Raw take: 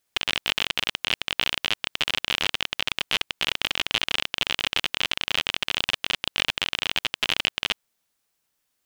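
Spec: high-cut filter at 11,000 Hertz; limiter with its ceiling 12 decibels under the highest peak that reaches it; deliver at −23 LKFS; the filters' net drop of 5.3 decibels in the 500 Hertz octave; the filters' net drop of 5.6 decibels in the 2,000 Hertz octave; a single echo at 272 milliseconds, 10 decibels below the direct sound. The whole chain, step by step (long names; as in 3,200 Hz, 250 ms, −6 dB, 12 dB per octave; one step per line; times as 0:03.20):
low-pass filter 11,000 Hz
parametric band 500 Hz −6.5 dB
parametric band 2,000 Hz −7.5 dB
brickwall limiter −17.5 dBFS
single-tap delay 272 ms −10 dB
level +14 dB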